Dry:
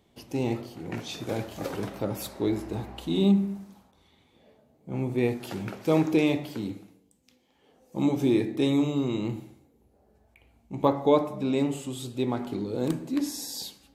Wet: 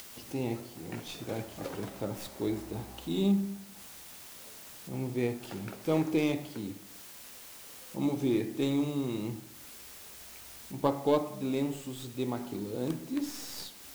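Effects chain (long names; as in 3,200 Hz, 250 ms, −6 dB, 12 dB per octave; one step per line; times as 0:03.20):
stylus tracing distortion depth 0.07 ms
bit-depth reduction 8 bits, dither triangular
upward compression, threshold −35 dBFS
level −5.5 dB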